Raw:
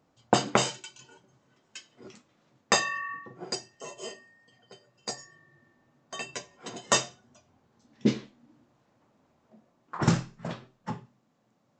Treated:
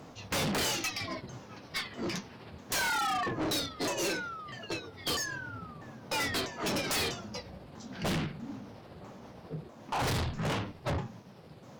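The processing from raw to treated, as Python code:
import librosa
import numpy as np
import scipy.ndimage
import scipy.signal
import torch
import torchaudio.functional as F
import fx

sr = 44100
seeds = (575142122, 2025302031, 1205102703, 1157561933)

y = fx.pitch_ramps(x, sr, semitones=-8.0, every_ms=646)
y = fx.fold_sine(y, sr, drive_db=18, ceiling_db=-5.0)
y = fx.tube_stage(y, sr, drive_db=28.0, bias=0.2)
y = y * 10.0 ** (-1.5 / 20.0)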